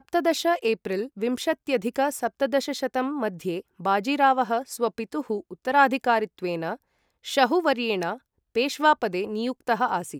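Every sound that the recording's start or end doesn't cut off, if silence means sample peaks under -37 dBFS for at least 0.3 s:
7.25–8.16 s

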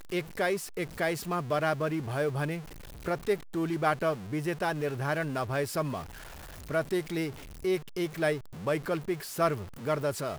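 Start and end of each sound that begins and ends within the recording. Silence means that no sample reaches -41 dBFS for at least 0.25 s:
3.05–6.04 s
6.69–7.31 s

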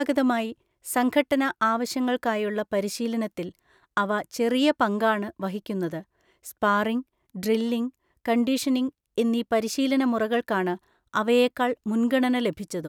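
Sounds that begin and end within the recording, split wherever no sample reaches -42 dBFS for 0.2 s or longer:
0.85–3.50 s
3.97–6.02 s
6.45–7.02 s
7.35–7.89 s
8.26–8.89 s
9.18–10.77 s

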